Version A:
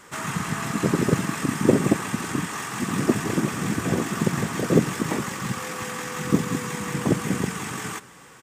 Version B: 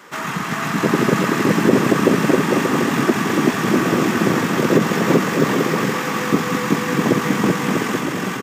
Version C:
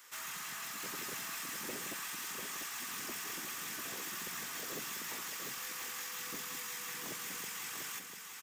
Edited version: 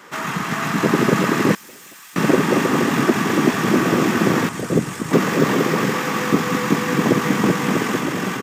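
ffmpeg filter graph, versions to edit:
-filter_complex "[1:a]asplit=3[s0][s1][s2];[s0]atrim=end=1.552[s3];[2:a]atrim=start=1.548:end=2.162[s4];[s1]atrim=start=2.158:end=4.492[s5];[0:a]atrim=start=4.488:end=5.132[s6];[s2]atrim=start=5.128[s7];[s3][s4]acrossfade=d=0.004:c1=hsin:c2=hsin[s8];[s8][s5]acrossfade=d=0.004:c1=hsin:c2=hsin[s9];[s9][s6]acrossfade=d=0.004:c1=hsin:c2=hsin[s10];[s10][s7]acrossfade=d=0.004:c1=hsin:c2=hsin"

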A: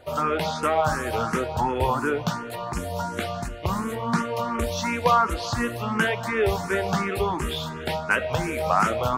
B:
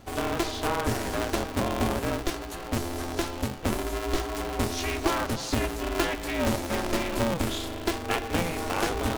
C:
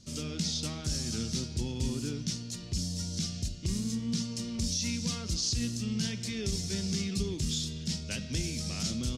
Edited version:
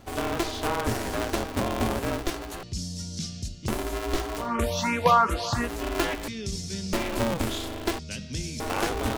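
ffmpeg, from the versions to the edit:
-filter_complex "[2:a]asplit=3[s0][s1][s2];[1:a]asplit=5[s3][s4][s5][s6][s7];[s3]atrim=end=2.632[s8];[s0]atrim=start=2.628:end=3.682[s9];[s4]atrim=start=3.678:end=4.51[s10];[0:a]atrim=start=4.35:end=5.73[s11];[s5]atrim=start=5.57:end=6.282[s12];[s1]atrim=start=6.278:end=6.932[s13];[s6]atrim=start=6.928:end=7.992[s14];[s2]atrim=start=7.988:end=8.602[s15];[s7]atrim=start=8.598[s16];[s8][s9]acrossfade=d=0.004:c1=hsin:c2=hsin[s17];[s17][s10]acrossfade=d=0.004:c1=hsin:c2=hsin[s18];[s18][s11]acrossfade=d=0.16:c1=tri:c2=tri[s19];[s19][s12]acrossfade=d=0.16:c1=tri:c2=tri[s20];[s20][s13]acrossfade=d=0.004:c1=hsin:c2=hsin[s21];[s21][s14]acrossfade=d=0.004:c1=hsin:c2=hsin[s22];[s22][s15]acrossfade=d=0.004:c1=hsin:c2=hsin[s23];[s23][s16]acrossfade=d=0.004:c1=hsin:c2=hsin"

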